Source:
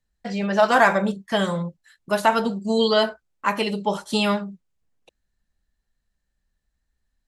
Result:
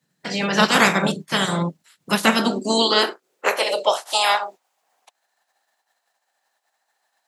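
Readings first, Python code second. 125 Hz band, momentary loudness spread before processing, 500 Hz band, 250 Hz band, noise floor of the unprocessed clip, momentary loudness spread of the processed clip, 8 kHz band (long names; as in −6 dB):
+2.0 dB, 11 LU, −1.0 dB, +1.0 dB, −78 dBFS, 9 LU, +11.0 dB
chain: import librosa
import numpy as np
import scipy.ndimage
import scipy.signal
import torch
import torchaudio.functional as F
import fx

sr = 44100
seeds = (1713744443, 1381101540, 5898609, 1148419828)

y = fx.spec_clip(x, sr, under_db=24)
y = scipy.signal.sosfilt(scipy.signal.butter(2, 83.0, 'highpass', fs=sr, output='sos'), y)
y = fx.filter_sweep_highpass(y, sr, from_hz=160.0, to_hz=760.0, start_s=1.99, end_s=4.17, q=3.9)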